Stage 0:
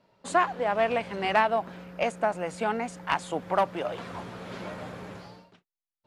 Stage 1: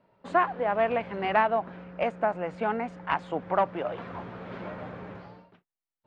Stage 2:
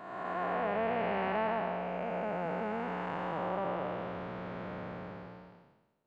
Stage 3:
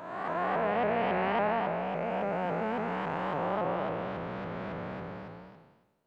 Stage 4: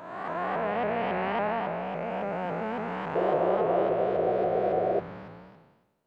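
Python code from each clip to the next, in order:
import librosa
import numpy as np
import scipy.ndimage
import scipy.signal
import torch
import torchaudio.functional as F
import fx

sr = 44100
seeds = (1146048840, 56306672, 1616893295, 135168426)

y1 = scipy.signal.sosfilt(scipy.signal.butter(2, 2300.0, 'lowpass', fs=sr, output='sos'), x)
y2 = fx.spec_blur(y1, sr, span_ms=541.0)
y3 = fx.vibrato_shape(y2, sr, shape='saw_up', rate_hz=3.6, depth_cents=160.0)
y3 = F.gain(torch.from_numpy(y3), 3.5).numpy()
y4 = fx.spec_paint(y3, sr, seeds[0], shape='noise', start_s=3.15, length_s=1.85, low_hz=330.0, high_hz=760.0, level_db=-26.0)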